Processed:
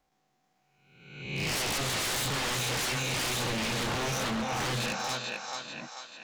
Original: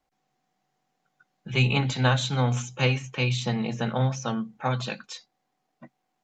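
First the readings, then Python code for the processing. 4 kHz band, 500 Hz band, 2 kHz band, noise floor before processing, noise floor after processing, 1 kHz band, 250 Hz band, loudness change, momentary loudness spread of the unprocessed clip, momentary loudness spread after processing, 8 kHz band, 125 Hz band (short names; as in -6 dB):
+1.5 dB, -4.5 dB, -1.0 dB, -78 dBFS, -74 dBFS, -1.5 dB, -6.5 dB, -4.0 dB, 8 LU, 9 LU, n/a, -11.5 dB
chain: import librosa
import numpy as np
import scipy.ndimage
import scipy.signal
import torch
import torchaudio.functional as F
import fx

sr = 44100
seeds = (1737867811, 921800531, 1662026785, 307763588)

y = fx.spec_swells(x, sr, rise_s=0.93)
y = fx.echo_thinned(y, sr, ms=439, feedback_pct=53, hz=550.0, wet_db=-5)
y = 10.0 ** (-26.0 / 20.0) * (np.abs((y / 10.0 ** (-26.0 / 20.0) + 3.0) % 4.0 - 2.0) - 1.0)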